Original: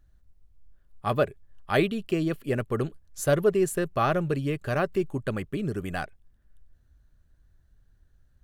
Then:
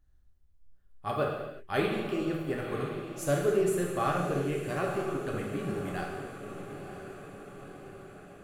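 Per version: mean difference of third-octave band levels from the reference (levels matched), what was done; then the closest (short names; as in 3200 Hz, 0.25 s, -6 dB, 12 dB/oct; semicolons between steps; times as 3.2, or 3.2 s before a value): 8.5 dB: on a send: diffused feedback echo 0.985 s, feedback 61%, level -10.5 dB; on the sum: non-linear reverb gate 0.4 s falling, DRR -1.5 dB; gain -8 dB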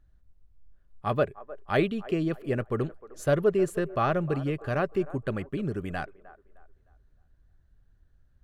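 3.5 dB: LPF 3100 Hz 6 dB/oct; on a send: band-limited delay 0.307 s, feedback 33%, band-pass 750 Hz, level -16 dB; on the sum: gain -1 dB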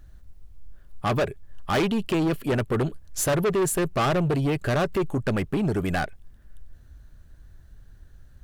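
4.5 dB: in parallel at -2.5 dB: compressor, threshold -36 dBFS, peak gain reduction 18 dB; on the sum: soft clip -27 dBFS, distortion -7 dB; gain +7.5 dB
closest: second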